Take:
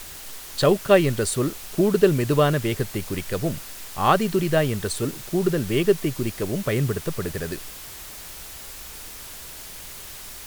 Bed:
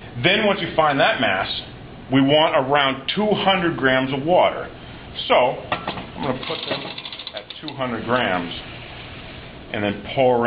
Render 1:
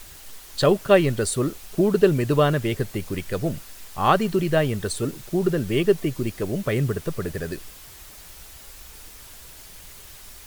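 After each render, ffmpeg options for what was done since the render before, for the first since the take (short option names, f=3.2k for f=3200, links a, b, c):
-af "afftdn=nr=6:nf=-39"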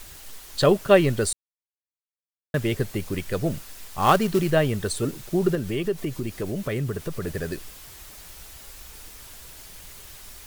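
-filter_complex "[0:a]asettb=1/sr,asplit=3[a][b][c];[a]atrim=end=3.514[d];[b]atrim=start=3.51:end=4.51,asetpts=PTS-STARTPTS,afade=t=in:d=0.004:c=qsin,afade=t=out:st=0.996:d=0.004:c=qsin,acrusher=bits=4:mode=log:mix=0:aa=0.000001[e];[c]atrim=start=4.506[f];[d][e]acrossfade=d=0.004:c1=hsin:c2=qsin[g];[g][f]acrossfade=d=0.004:c1=qsin:c2=hsin,asettb=1/sr,asplit=3[h][i][j];[h]atrim=end=5.554[k];[i]atrim=start=5.55:end=7.27,asetpts=PTS-STARTPTS,afade=t=in:d=0.004:c=qsin,afade=t=out:st=1.716:d=0.004:c=qsin,acompressor=threshold=-26dB:ratio=2:attack=3.2:release=140:knee=1:detection=peak[l];[j]atrim=start=7.266[m];[k][l]acrossfade=d=0.004:c1=hsin:c2=qsin[n];[n][m]acrossfade=d=0.004:c1=qsin:c2=hsin,asplit=3[o][p][q];[o]atrim=end=1.33,asetpts=PTS-STARTPTS,afade=t=out:st=1.326:d=0.004:c=hsin[r];[p]atrim=start=1.33:end=2.54,asetpts=PTS-STARTPTS,volume=0[s];[q]atrim=start=2.54,asetpts=PTS-STARTPTS,afade=t=in:d=0.004:c=hsin[t];[r][s][t]concat=n=3:v=0:a=1"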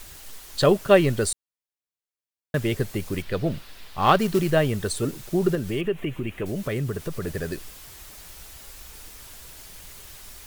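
-filter_complex "[0:a]asettb=1/sr,asplit=3[a][b][c];[a]atrim=end=3.224[d];[b]atrim=start=3.22:end=4.19,asetpts=PTS-STARTPTS,afade=t=in:d=0.004:c=qsin,afade=t=out:st=0.966:d=0.004:c=qsin,highshelf=f=5.2k:t=q:w=1.5:g=-8[e];[c]atrim=start=4.186[f];[d][e]acrossfade=d=0.004:c1=hsin:c2=qsin[g];[g][f]acrossfade=d=0.004:c1=qsin:c2=hsin,asettb=1/sr,asplit=3[h][i][j];[h]atrim=end=5.814[k];[i]atrim=start=5.81:end=6.46,asetpts=PTS-STARTPTS,afade=t=in:d=0.004:c=qsin,afade=t=out:st=0.646:d=0.004:c=qsin,highshelf=f=3.6k:t=q:w=3:g=-9.5[l];[j]atrim=start=6.456[m];[k][l]acrossfade=d=0.004:c1=hsin:c2=qsin[n];[n][m]acrossfade=d=0.004:c1=qsin:c2=hsin"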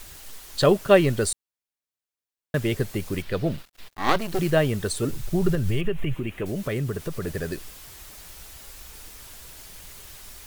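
-filter_complex "[0:a]asettb=1/sr,asplit=3[a][b][c];[a]atrim=end=3.564[d];[b]atrim=start=3.56:end=4.39,asetpts=PTS-STARTPTS,afade=t=in:d=0.004:c=qsin,afade=t=out:st=0.826:d=0.004:c=qsin,aeval=exprs='max(val(0),0)':c=same[e];[c]atrim=start=4.386[f];[d][e]acrossfade=d=0.004:c1=hsin:c2=qsin[g];[g][f]acrossfade=d=0.004:c1=qsin:c2=hsin,asplit=3[h][i][j];[h]afade=t=out:st=5.09:d=0.02[k];[i]asubboost=boost=6:cutoff=110,afade=t=in:st=5.09:d=0.02,afade=t=out:st=6.14:d=0.02[l];[j]afade=t=in:st=6.14:d=0.02[m];[k][l][m]amix=inputs=3:normalize=0"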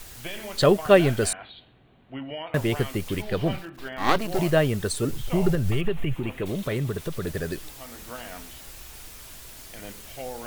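-filter_complex "[1:a]volume=-20dB[a];[0:a][a]amix=inputs=2:normalize=0"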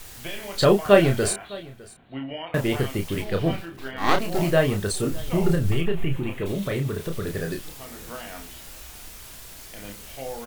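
-filter_complex "[0:a]asplit=2[a][b];[b]adelay=30,volume=-5dB[c];[a][c]amix=inputs=2:normalize=0,aecho=1:1:607:0.0841"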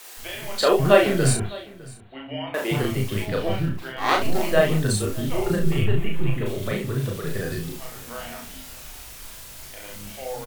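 -filter_complex "[0:a]asplit=2[a][b];[b]adelay=38,volume=-3dB[c];[a][c]amix=inputs=2:normalize=0,acrossover=split=310[d][e];[d]adelay=170[f];[f][e]amix=inputs=2:normalize=0"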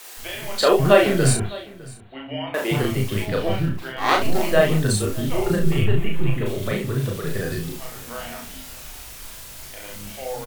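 -af "volume=2dB,alimiter=limit=-2dB:level=0:latency=1"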